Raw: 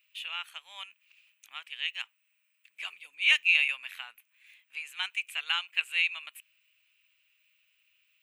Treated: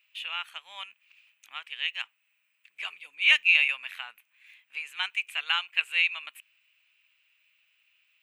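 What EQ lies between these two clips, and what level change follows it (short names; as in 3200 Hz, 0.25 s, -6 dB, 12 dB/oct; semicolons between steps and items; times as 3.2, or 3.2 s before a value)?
high shelf 4200 Hz -8.5 dB; +5.0 dB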